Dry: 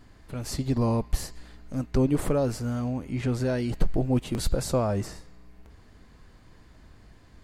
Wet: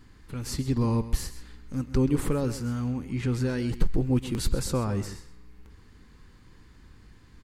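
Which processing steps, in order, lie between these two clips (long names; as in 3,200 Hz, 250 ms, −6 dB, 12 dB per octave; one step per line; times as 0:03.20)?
parametric band 650 Hz −14.5 dB 0.42 octaves
single-tap delay 131 ms −14 dB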